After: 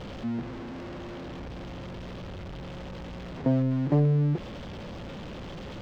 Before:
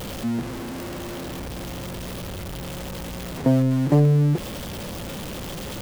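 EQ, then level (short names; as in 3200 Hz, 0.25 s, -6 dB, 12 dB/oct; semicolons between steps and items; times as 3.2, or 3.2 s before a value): air absorption 180 m; -5.5 dB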